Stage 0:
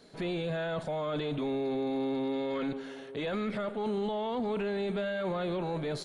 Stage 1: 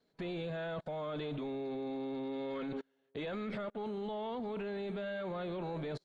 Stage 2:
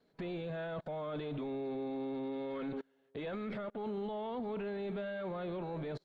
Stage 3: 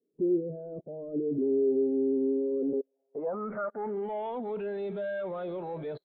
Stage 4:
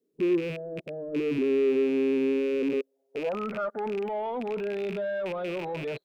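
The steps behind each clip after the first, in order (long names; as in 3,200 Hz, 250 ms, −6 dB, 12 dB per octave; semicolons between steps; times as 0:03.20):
Bessel low-pass filter 5,300 Hz, order 2; output level in coarse steps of 20 dB; expander for the loud parts 2.5 to 1, over −52 dBFS; level +2.5 dB
brickwall limiter −37 dBFS, peak gain reduction 7.5 dB; high-shelf EQ 4,600 Hz −10 dB; level +4.5 dB
mid-hump overdrive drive 11 dB, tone 2,000 Hz, clips at −32.5 dBFS; low-pass filter sweep 370 Hz → 3,700 Hz, 0:02.53–0:04.40; every bin expanded away from the loudest bin 1.5 to 1; level +8.5 dB
loose part that buzzes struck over −45 dBFS, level −32 dBFS; in parallel at −8 dB: soft clipping −34 dBFS, distortion −7 dB; on the sum: level +1 dB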